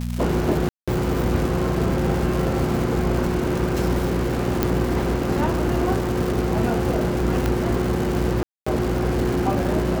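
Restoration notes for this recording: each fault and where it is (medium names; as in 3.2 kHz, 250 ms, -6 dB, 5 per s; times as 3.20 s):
crackle 450 per s -26 dBFS
hum 60 Hz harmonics 4 -26 dBFS
0.69–0.88 s: dropout 186 ms
4.63 s: pop -5 dBFS
7.46 s: pop -9 dBFS
8.43–8.66 s: dropout 235 ms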